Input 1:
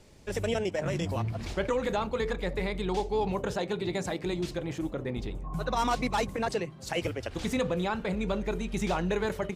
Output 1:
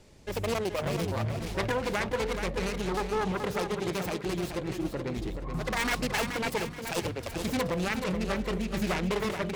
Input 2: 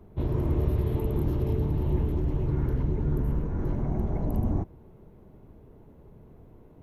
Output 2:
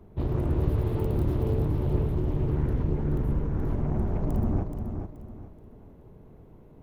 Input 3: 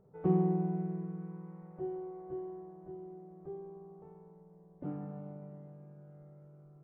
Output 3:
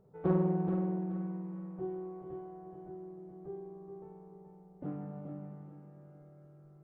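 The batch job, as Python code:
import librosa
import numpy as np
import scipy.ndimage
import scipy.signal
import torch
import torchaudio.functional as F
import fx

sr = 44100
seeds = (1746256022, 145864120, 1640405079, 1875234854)

y = fx.self_delay(x, sr, depth_ms=0.45)
y = fx.echo_feedback(y, sr, ms=427, feedback_pct=32, wet_db=-7.0)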